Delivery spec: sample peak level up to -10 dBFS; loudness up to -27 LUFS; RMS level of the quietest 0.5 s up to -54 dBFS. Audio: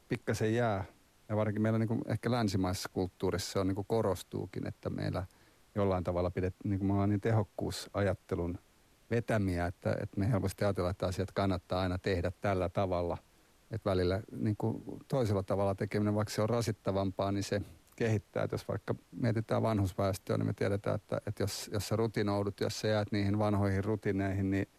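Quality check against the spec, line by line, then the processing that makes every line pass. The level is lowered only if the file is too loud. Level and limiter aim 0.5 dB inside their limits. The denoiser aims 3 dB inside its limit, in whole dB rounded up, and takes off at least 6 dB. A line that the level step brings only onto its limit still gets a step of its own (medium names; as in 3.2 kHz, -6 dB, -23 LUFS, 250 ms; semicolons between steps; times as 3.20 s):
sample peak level -21.0 dBFS: pass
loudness -34.0 LUFS: pass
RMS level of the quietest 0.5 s -65 dBFS: pass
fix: none needed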